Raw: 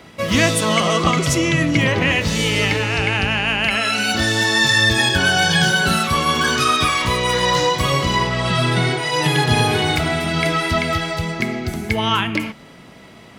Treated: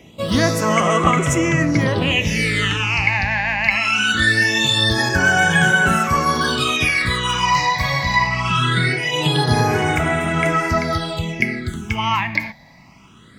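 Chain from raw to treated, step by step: dynamic EQ 1800 Hz, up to +7 dB, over -32 dBFS, Q 0.75; phaser stages 8, 0.22 Hz, lowest notch 390–4400 Hz; gain -1 dB

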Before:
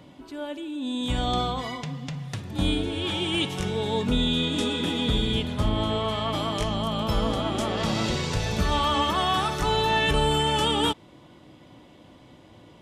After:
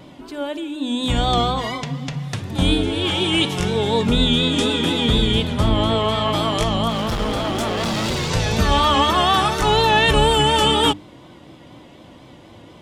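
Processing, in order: 6.89–8.31 overloaded stage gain 26.5 dB; vibrato 4.1 Hz 62 cents; notches 50/100/150/200/250/300 Hz; gain +7.5 dB

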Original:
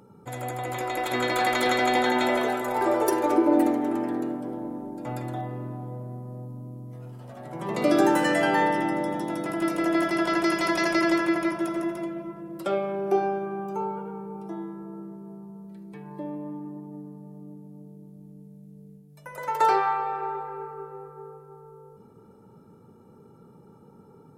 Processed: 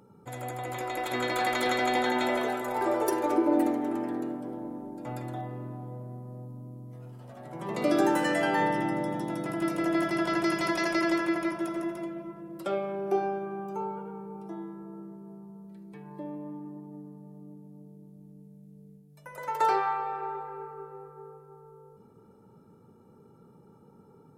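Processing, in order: 8.59–10.72 bell 120 Hz +8 dB 1.1 oct; gain -4 dB

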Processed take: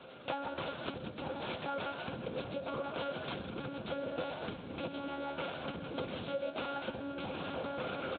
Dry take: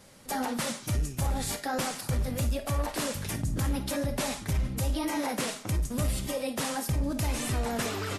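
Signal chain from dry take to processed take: careless resampling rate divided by 6×, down none, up hold; notches 60/120/180/240 Hz; echo 0.192 s -13.5 dB; in parallel at -6 dB: bit-crush 5-bit; on the sum: monotone LPC vocoder at 8 kHz 280 Hz; bell 1900 Hz -11 dB 0.31 oct; small resonant body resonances 520/1400 Hz, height 11 dB, ringing for 95 ms; on a send: frequency-shifting echo 0.123 s, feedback 45%, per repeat +76 Hz, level -12 dB; on the sum: compressor 6:1, threshold -39 dBFS, peak gain reduction 18.5 dB; HPF 170 Hz 12 dB/oct; gain +4.5 dB

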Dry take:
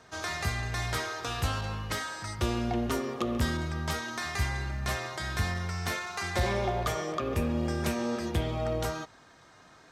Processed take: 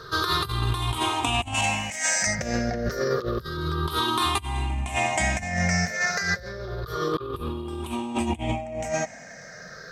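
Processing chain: moving spectral ripple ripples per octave 0.6, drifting -0.29 Hz, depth 20 dB; 1.54–2.27 tilt +3 dB/oct; negative-ratio compressor -31 dBFS, ratio -0.5; gain +5 dB

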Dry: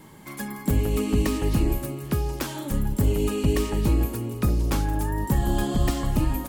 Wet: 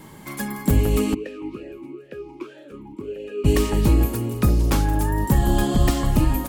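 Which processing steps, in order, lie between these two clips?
1.13–3.44 vowel sweep e-u 3.1 Hz -> 1.3 Hz; gain +4.5 dB

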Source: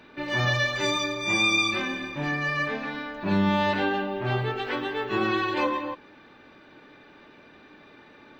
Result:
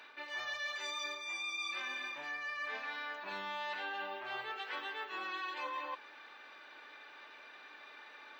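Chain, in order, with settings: HPF 880 Hz 12 dB/oct; reverse; compressor 6:1, threshold -40 dBFS, peak gain reduction 19 dB; reverse; gain +1 dB

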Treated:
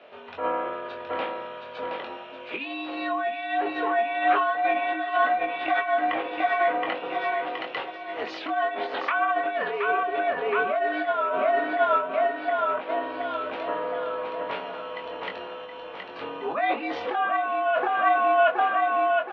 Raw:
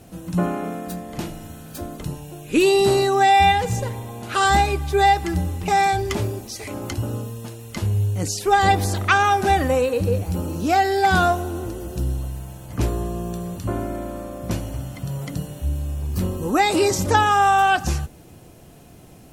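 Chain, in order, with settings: feedback echo 0.721 s, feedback 50%, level -5 dB; negative-ratio compressor -22 dBFS, ratio -1; mistuned SSB -86 Hz 580–3400 Hz; doubler 22 ms -5 dB; treble ducked by the level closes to 2300 Hz, closed at -23 dBFS; gain +1.5 dB

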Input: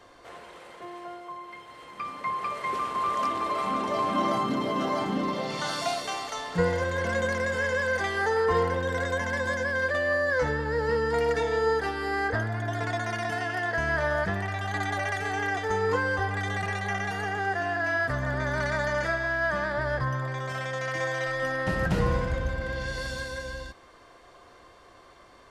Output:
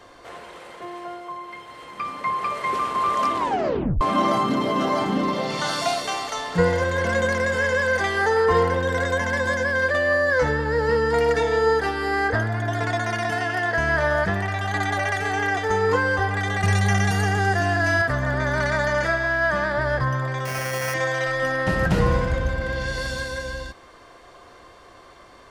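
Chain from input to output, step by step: 3.37 tape stop 0.64 s; 16.63–18.02 tone controls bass +11 dB, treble +10 dB; 20.45–20.94 sample-rate reducer 3800 Hz, jitter 0%; gain +5.5 dB

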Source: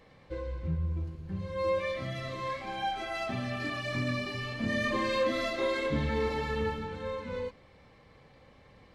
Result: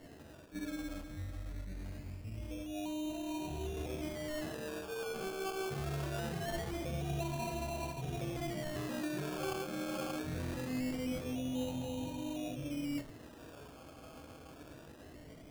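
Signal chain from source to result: weighting filter D; speed mistake 78 rpm record played at 45 rpm; brick-wall FIR band-stop 740–2400 Hz; reverse; compressor 6:1, threshold -44 dBFS, peak gain reduction 18 dB; reverse; high shelf 4700 Hz +10.5 dB; thin delay 0.579 s, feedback 61%, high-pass 2000 Hz, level -5 dB; on a send at -7 dB: reverb RT60 0.35 s, pre-delay 7 ms; on the sum: decimation with a swept rate 18×, swing 60% 0.23 Hz; gain +5.5 dB

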